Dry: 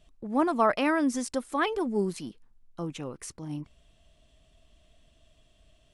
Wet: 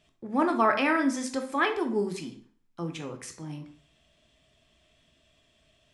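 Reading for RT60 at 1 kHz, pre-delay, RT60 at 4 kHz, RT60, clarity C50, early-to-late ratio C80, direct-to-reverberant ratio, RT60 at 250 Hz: 0.45 s, 10 ms, 0.45 s, 0.45 s, 10.5 dB, 15.5 dB, 5.0 dB, 0.45 s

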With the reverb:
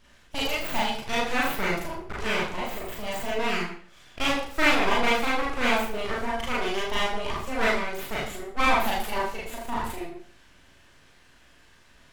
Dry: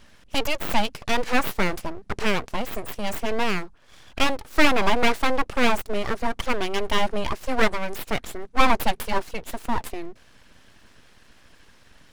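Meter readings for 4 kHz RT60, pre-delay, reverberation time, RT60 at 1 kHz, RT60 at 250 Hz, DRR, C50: 0.50 s, 36 ms, 0.50 s, 0.50 s, 0.50 s, −6.5 dB, 3.0 dB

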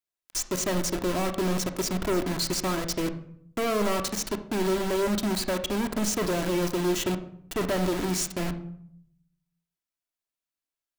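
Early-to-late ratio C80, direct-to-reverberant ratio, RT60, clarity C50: 15.5 dB, 6.5 dB, 0.65 s, 11.5 dB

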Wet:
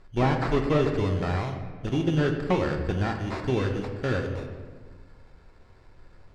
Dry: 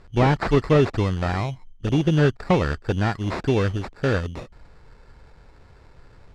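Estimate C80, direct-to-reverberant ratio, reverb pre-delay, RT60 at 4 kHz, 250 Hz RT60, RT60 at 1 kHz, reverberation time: 8.0 dB, 3.0 dB, 3 ms, 0.95 s, 2.0 s, 1.3 s, 1.5 s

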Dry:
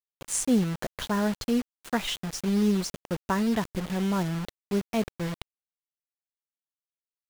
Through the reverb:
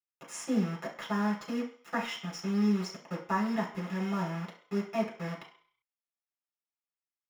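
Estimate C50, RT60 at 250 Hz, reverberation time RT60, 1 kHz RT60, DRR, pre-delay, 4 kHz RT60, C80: 8.0 dB, 0.35 s, 0.50 s, 0.60 s, −3.5 dB, 3 ms, 0.60 s, 12.5 dB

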